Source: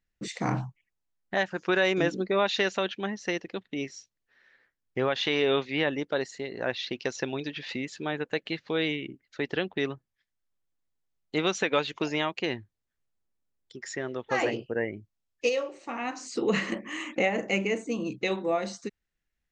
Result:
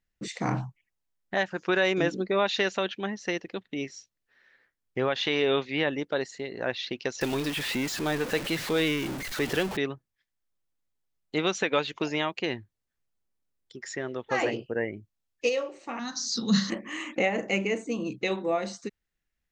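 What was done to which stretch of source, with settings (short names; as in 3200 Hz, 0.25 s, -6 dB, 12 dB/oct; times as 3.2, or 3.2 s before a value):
7.21–9.77 zero-crossing step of -29.5 dBFS
15.99–16.7 EQ curve 120 Hz 0 dB, 220 Hz +9 dB, 330 Hz -17 dB, 470 Hz -12 dB, 780 Hz -9 dB, 1600 Hz 0 dB, 2500 Hz -19 dB, 3700 Hz +13 dB, 5900 Hz +14 dB, 9500 Hz -15 dB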